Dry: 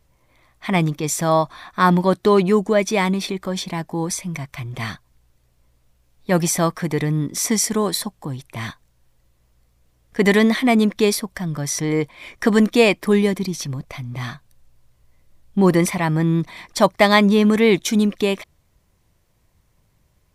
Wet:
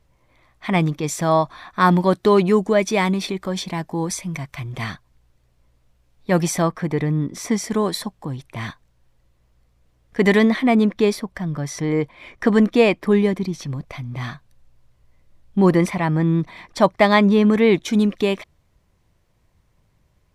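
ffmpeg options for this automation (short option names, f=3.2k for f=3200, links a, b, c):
-af "asetnsamples=n=441:p=0,asendcmd='1.81 lowpass f 8200;4.84 lowpass f 4700;6.62 lowpass f 1900;7.7 lowpass f 4000;10.45 lowpass f 2200;13.67 lowpass f 4200;15.71 lowpass f 2500;17.93 lowpass f 4500',lowpass=f=4.7k:p=1"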